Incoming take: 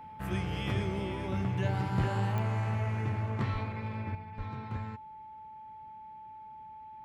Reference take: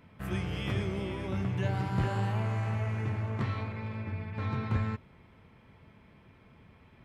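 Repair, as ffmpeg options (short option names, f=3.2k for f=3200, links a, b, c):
-filter_complex "[0:a]adeclick=t=4,bandreject=f=870:w=30,asplit=3[a][b][c];[a]afade=t=out:st=3.52:d=0.02[d];[b]highpass=f=140:w=0.5412,highpass=f=140:w=1.3066,afade=t=in:st=3.52:d=0.02,afade=t=out:st=3.64:d=0.02[e];[c]afade=t=in:st=3.64:d=0.02[f];[d][e][f]amix=inputs=3:normalize=0,asplit=3[g][h][i];[g]afade=t=out:st=4.37:d=0.02[j];[h]highpass=f=140:w=0.5412,highpass=f=140:w=1.3066,afade=t=in:st=4.37:d=0.02,afade=t=out:st=4.49:d=0.02[k];[i]afade=t=in:st=4.49:d=0.02[l];[j][k][l]amix=inputs=3:normalize=0,asetnsamples=n=441:p=0,asendcmd='4.15 volume volume 8dB',volume=0dB"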